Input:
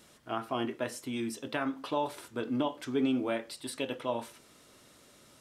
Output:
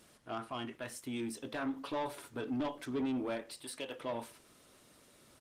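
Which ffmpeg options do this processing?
-filter_complex "[0:a]asplit=3[s0][s1][s2];[s0]afade=t=out:st=0.47:d=0.02[s3];[s1]equalizer=f=410:w=0.82:g=-8.5,afade=t=in:st=0.47:d=0.02,afade=t=out:st=1.06:d=0.02[s4];[s2]afade=t=in:st=1.06:d=0.02[s5];[s3][s4][s5]amix=inputs=3:normalize=0,asettb=1/sr,asplit=3[s6][s7][s8];[s6]atrim=end=1.624[s9];[s7]atrim=start=1.62:end=2.85,asetpts=PTS-STARTPTS,afade=t=in:d=0.004:c=qsin,afade=t=out:st=1.226:d=0.004:c=qsin,aecho=1:1:7.1:0.41,atrim=end_sample=54243[s10];[s8]atrim=start=2.846[s11];[s9][s10]acrossfade=d=0.004:c1=hsin:c2=qsin[s12];[s12][s11]acrossfade=d=0.004:c1=qsin:c2=hsin,asettb=1/sr,asplit=3[s13][s14][s15];[s13]atrim=end=3.414[s16];[s14]atrim=start=3.41:end=4.01,asetpts=PTS-STARTPTS,afade=t=in:d=0.004:c=qsin,afade=t=out:st=0.596:d=0.004:c=qsin,acrossover=split=450|3000[s17][s18][s19];[s17]acompressor=threshold=0.00224:ratio=2[s20];[s20][s18][s19]amix=inputs=3:normalize=0[s21];[s15]atrim=start=4.006[s22];[s16][s21]acrossfade=d=0.004:c1=hsin:c2=qsin[s23];[s23][s22]acrossfade=d=0.004:c1=qsin:c2=hsin,asoftclip=type=tanh:threshold=0.0398,aresample=32000,aresample=44100,volume=0.794" -ar 48000 -c:a libopus -b:a 24k

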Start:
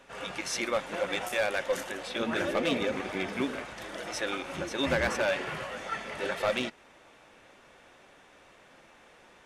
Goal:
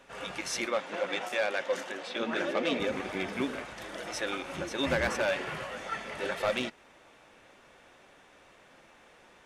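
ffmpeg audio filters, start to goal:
-filter_complex "[0:a]asettb=1/sr,asplit=3[s0][s1][s2];[s0]atrim=end=0.664[s3];[s1]atrim=start=0.66:end=2.8,asetpts=PTS-STARTPTS,afade=t=in:d=0.004:c=qsin,afade=t=out:st=2.136:d=0.004:c=qsin,acrossover=split=160 7200:gain=0.0794 1 0.251[s4][s5][s6];[s4][s5][s6]amix=inputs=3:normalize=0[s7];[s2]atrim=start=2.796[s8];[s3][s7]acrossfade=d=0.004:c1=hsin:c2=qsin[s9];[s9][s8]acrossfade=d=0.004:c1=qsin:c2=hsin,volume=0.891"

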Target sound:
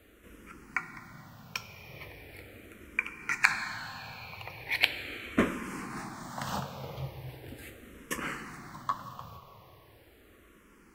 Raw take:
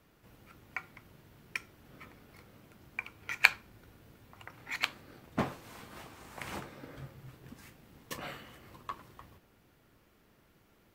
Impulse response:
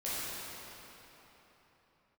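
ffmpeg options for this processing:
-filter_complex "[0:a]asplit=2[s0][s1];[1:a]atrim=start_sample=2205,asetrate=37485,aresample=44100[s2];[s1][s2]afir=irnorm=-1:irlink=0,volume=0.168[s3];[s0][s3]amix=inputs=2:normalize=0,alimiter=level_in=2.66:limit=0.891:release=50:level=0:latency=1,asplit=2[s4][s5];[s5]afreqshift=-0.39[s6];[s4][s6]amix=inputs=2:normalize=1"

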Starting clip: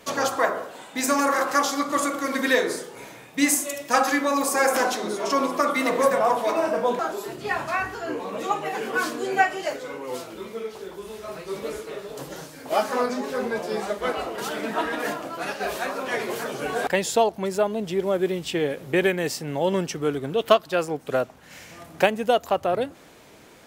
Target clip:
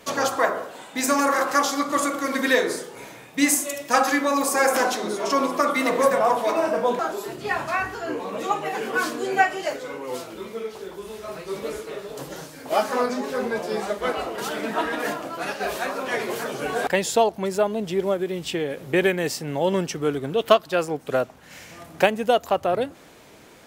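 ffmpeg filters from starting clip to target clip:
-filter_complex "[0:a]asettb=1/sr,asplit=3[s0][s1][s2];[s0]atrim=end=18.134[s3];[s1]atrim=start=18.13:end=18.85,asetpts=PTS-STARTPTS,afade=t=in:d=0.004:c=qsin,afade=t=out:st=0.716:d=0.004:c=qsin,acompressor=threshold=0.0708:ratio=6[s4];[s2]atrim=start=18.846[s5];[s3][s4]acrossfade=d=0.004:c1=hsin:c2=qsin[s6];[s6][s5]acrossfade=d=0.004:c1=qsin:c2=hsin,volume=1.12"

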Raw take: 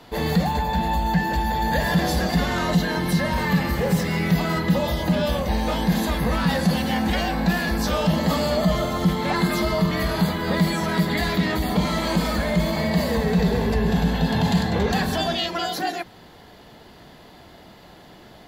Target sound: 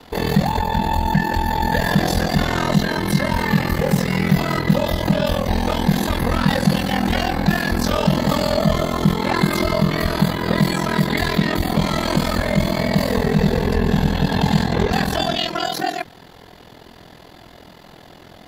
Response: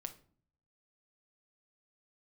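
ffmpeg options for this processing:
-af "aeval=exprs='val(0)*sin(2*PI*21*n/s)':c=same,volume=2"

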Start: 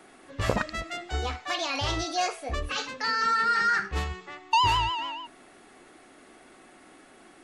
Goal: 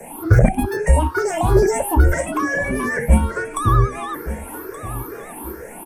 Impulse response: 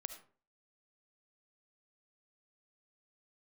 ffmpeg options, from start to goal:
-filter_complex "[0:a]afftfilt=real='re*pow(10,21/40*sin(2*PI*(0.56*log(max(b,1)*sr/1024/100)/log(2)-(1.8)*(pts-256)/sr)))':imag='im*pow(10,21/40*sin(2*PI*(0.56*log(max(b,1)*sr/1024/100)/log(2)-(1.8)*(pts-256)/sr)))':win_size=1024:overlap=0.75,acrossover=split=450[s0][s1];[s1]acompressor=threshold=0.02:ratio=8[s2];[s0][s2]amix=inputs=2:normalize=0,asplit=2[s3][s4];[s4]asoftclip=type=tanh:threshold=0.0708,volume=0.631[s5];[s3][s5]amix=inputs=2:normalize=0,bandreject=f=5600:w=12,asetrate=56007,aresample=44100,firequalizer=gain_entry='entry(120,0);entry(1500,-9);entry(3900,-27);entry(6900,-9);entry(10000,3)':delay=0.05:min_phase=1,afreqshift=-22,adynamicequalizer=threshold=0.002:dfrequency=1800:dqfactor=0.99:tfrequency=1800:tqfactor=0.99:attack=5:release=100:ratio=0.375:range=2:mode=boostabove:tftype=bell,aecho=1:1:1175|2350|3525:0.188|0.0565|0.017,alimiter=level_in=5.31:limit=0.891:release=50:level=0:latency=1,volume=0.891"

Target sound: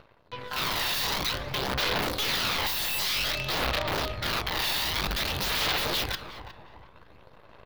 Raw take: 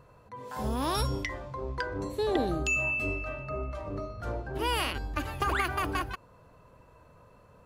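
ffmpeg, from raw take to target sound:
-filter_complex "[0:a]aeval=exprs='(mod(35.5*val(0)+1,2)-1)/35.5':c=same,aeval=exprs='0.0282*(cos(1*acos(clip(val(0)/0.0282,-1,1)))-cos(1*PI/2))+0.002*(cos(3*acos(clip(val(0)/0.0282,-1,1)))-cos(3*PI/2))+0.00224*(cos(6*acos(clip(val(0)/0.0282,-1,1)))-cos(6*PI/2))+0.00282*(cos(7*acos(clip(val(0)/0.0282,-1,1)))-cos(7*PI/2))+0.00355*(cos(8*acos(clip(val(0)/0.0282,-1,1)))-cos(8*PI/2))':c=same,equalizer=f=250:t=o:w=1:g=-4,equalizer=f=4000:t=o:w=1:g=9,equalizer=f=8000:t=o:w=1:g=-11,areverse,acompressor=mode=upward:threshold=0.00316:ratio=2.5,areverse,lowshelf=f=130:g=-3.5,bandreject=f=375.5:t=h:w=4,bandreject=f=751:t=h:w=4,bandreject=f=1126.5:t=h:w=4,bandreject=f=1502:t=h:w=4,bandreject=f=1877.5:t=h:w=4,bandreject=f=2253:t=h:w=4,bandreject=f=2628.5:t=h:w=4,bandreject=f=3004:t=h:w=4,bandreject=f=3379.5:t=h:w=4,bandreject=f=3755:t=h:w=4,bandreject=f=4130.5:t=h:w=4,bandreject=f=4506:t=h:w=4,bandreject=f=4881.5:t=h:w=4,bandreject=f=5257:t=h:w=4,bandreject=f=5632.5:t=h:w=4,bandreject=f=6008:t=h:w=4,bandreject=f=6383.5:t=h:w=4,bandreject=f=6759:t=h:w=4,bandreject=f=7134.5:t=h:w=4,bandreject=f=7510:t=h:w=4,bandreject=f=7885.5:t=h:w=4,bandreject=f=8261:t=h:w=4,bandreject=f=8636.5:t=h:w=4,bandreject=f=9012:t=h:w=4,bandreject=f=9387.5:t=h:w=4,bandreject=f=9763:t=h:w=4,bandreject=f=10138.5:t=h:w=4,bandreject=f=10514:t=h:w=4,bandreject=f=10889.5:t=h:w=4,bandreject=f=11265:t=h:w=4,bandreject=f=11640.5:t=h:w=4,bandreject=f=12016:t=h:w=4,bandreject=f=12391.5:t=h:w=4,bandreject=f=12767:t=h:w=4,bandreject=f=13142.5:t=h:w=4,bandreject=f=13518:t=h:w=4,bandreject=f=13893.5:t=h:w=4,asplit=2[s0][s1];[s1]adelay=361,lowpass=f=1400:p=1,volume=0.355,asplit=2[s2][s3];[s3]adelay=361,lowpass=f=1400:p=1,volume=0.44,asplit=2[s4][s5];[s5]adelay=361,lowpass=f=1400:p=1,volume=0.44,asplit=2[s6][s7];[s7]adelay=361,lowpass=f=1400:p=1,volume=0.44,asplit=2[s8][s9];[s9]adelay=361,lowpass=f=1400:p=1,volume=0.44[s10];[s2][s4][s6][s8][s10]amix=inputs=5:normalize=0[s11];[s0][s11]amix=inputs=2:normalize=0,aphaser=in_gain=1:out_gain=1:delay=1.1:decay=0.32:speed=0.53:type=sinusoidal,volume=2.11"

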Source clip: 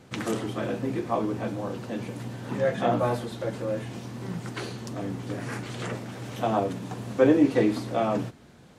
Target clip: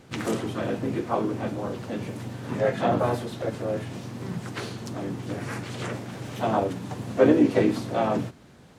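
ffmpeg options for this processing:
-filter_complex "[0:a]asplit=4[s0][s1][s2][s3];[s1]asetrate=35002,aresample=44100,atempo=1.25992,volume=0.398[s4];[s2]asetrate=52444,aresample=44100,atempo=0.840896,volume=0.316[s5];[s3]asetrate=58866,aresample=44100,atempo=0.749154,volume=0.158[s6];[s0][s4][s5][s6]amix=inputs=4:normalize=0"

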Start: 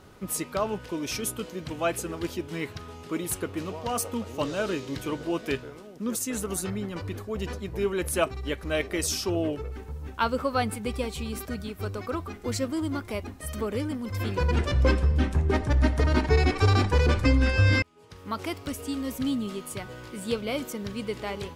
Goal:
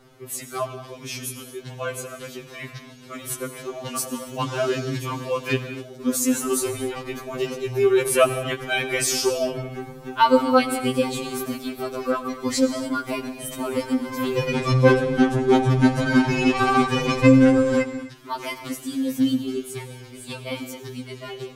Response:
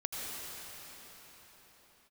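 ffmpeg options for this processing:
-filter_complex "[0:a]dynaudnorm=f=960:g=9:m=2.51,asplit=2[s0][s1];[1:a]atrim=start_sample=2205,afade=t=out:st=0.33:d=0.01,atrim=end_sample=14994[s2];[s1][s2]afir=irnorm=-1:irlink=0,volume=0.447[s3];[s0][s3]amix=inputs=2:normalize=0,afftfilt=real='re*2.45*eq(mod(b,6),0)':imag='im*2.45*eq(mod(b,6),0)':win_size=2048:overlap=0.75,volume=0.891"

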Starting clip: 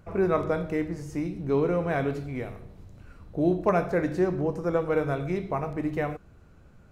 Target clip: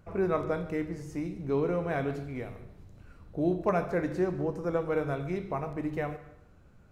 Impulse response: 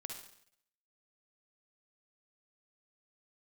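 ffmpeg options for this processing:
-filter_complex "[0:a]asplit=2[s0][s1];[1:a]atrim=start_sample=2205,adelay=144[s2];[s1][s2]afir=irnorm=-1:irlink=0,volume=0.211[s3];[s0][s3]amix=inputs=2:normalize=0,volume=0.631"

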